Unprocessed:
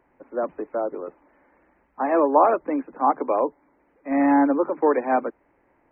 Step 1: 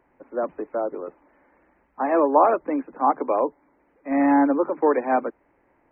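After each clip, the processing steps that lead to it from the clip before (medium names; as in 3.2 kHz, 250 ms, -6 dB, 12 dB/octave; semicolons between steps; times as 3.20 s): no audible change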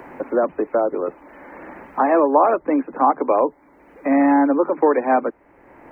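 three bands compressed up and down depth 70%; trim +4 dB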